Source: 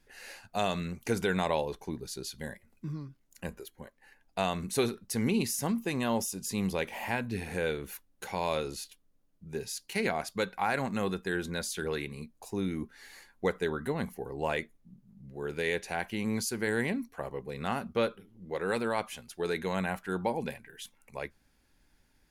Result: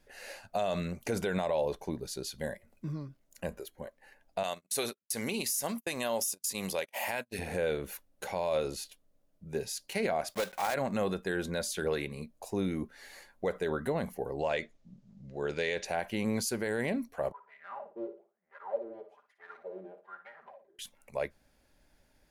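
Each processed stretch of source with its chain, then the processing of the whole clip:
4.43–7.39 tilt +3 dB/oct + compressor 2.5:1, threshold -31 dBFS + gate -39 dBFS, range -40 dB
10.3–10.76 block floating point 3-bit + low shelf 390 Hz -7.5 dB
14.39–15.85 LPF 6700 Hz 24 dB/oct + high shelf 2300 Hz +8.5 dB
17.32–20.79 minimum comb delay 5 ms + wah 1.1 Hz 340–2000 Hz, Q 11 + flutter echo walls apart 9.9 m, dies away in 0.34 s
whole clip: bell 600 Hz +10.5 dB 0.53 oct; limiter -21.5 dBFS

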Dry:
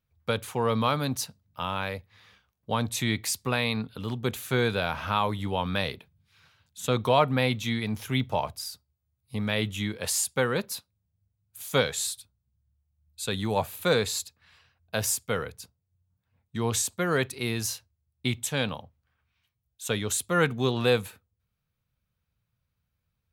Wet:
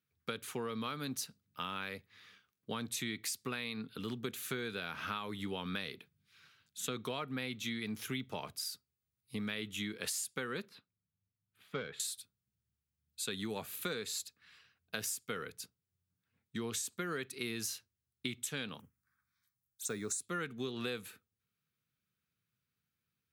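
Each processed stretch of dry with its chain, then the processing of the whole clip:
10.69–12 air absorption 440 m + tube stage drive 15 dB, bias 0.45
18.79–20.22 block floating point 7-bit + high shelf 3900 Hz +5.5 dB + envelope phaser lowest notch 470 Hz, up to 3100 Hz, full sweep at -30.5 dBFS
whole clip: HPF 190 Hz 12 dB/oct; band shelf 730 Hz -9.5 dB 1.2 oct; compressor 10:1, threshold -33 dBFS; gain -2 dB

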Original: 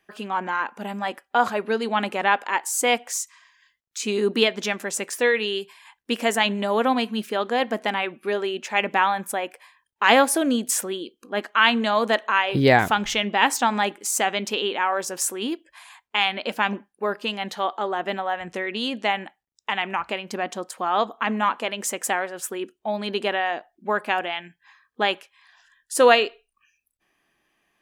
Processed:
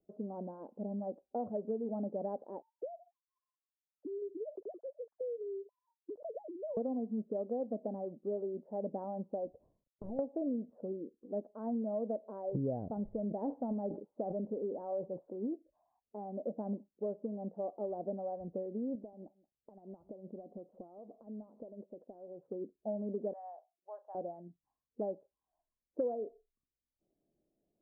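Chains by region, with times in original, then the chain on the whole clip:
2.62–6.77 sine-wave speech + compressor 10:1, threshold -29 dBFS
9.45–10.19 CVSD 32 kbps + low shelf 240 Hz +6.5 dB + compressor 16:1, threshold -28 dBFS
13.19–15.37 LPF 4000 Hz + sustainer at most 100 dB/s
18.95–22.43 compressor 12:1, threshold -35 dBFS + echo 0.178 s -22 dB
23.33–24.15 elliptic band-pass 840–7700 Hz, stop band 50 dB + doubler 38 ms -12.5 dB
whole clip: elliptic low-pass 610 Hz, stop band 80 dB; dynamic EQ 360 Hz, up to -6 dB, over -44 dBFS, Q 4.8; compressor 5:1, threshold -28 dBFS; gain -5 dB

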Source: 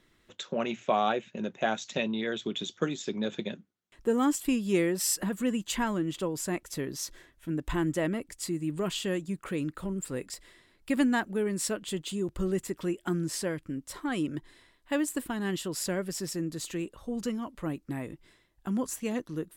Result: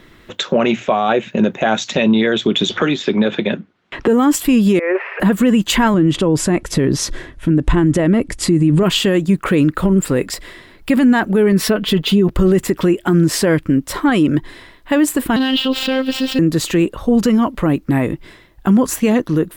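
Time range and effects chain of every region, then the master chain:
2.7–4.08 LPF 3200 Hz + tilt +1.5 dB/oct + three-band squash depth 70%
4.79–5.2 switching spikes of -26 dBFS + Chebyshev band-pass 390–2500 Hz, order 5 + negative-ratio compressor -38 dBFS
5.94–8.83 steep low-pass 11000 Hz 48 dB/oct + low shelf 370 Hz +7 dB
11.52–12.31 bell 8000 Hz -14 dB 0.57 oct + comb 4.6 ms, depth 83%
15.36–16.39 median filter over 9 samples + robotiser 262 Hz + band shelf 3600 Hz +15.5 dB 1.1 oct
whole clip: bell 8100 Hz -8.5 dB 1.7 oct; maximiser +26 dB; gain -4.5 dB

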